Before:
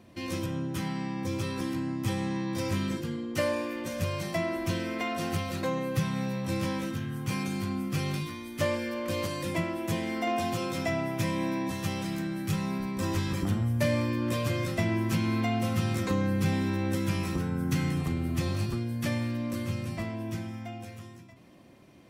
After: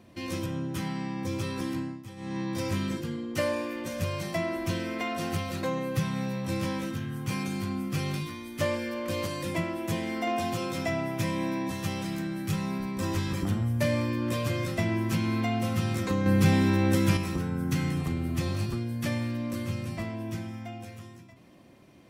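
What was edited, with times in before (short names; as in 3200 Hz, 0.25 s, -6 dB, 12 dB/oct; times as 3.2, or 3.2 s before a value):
1.79–2.4 dip -14.5 dB, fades 0.24 s
16.26–17.17 gain +5.5 dB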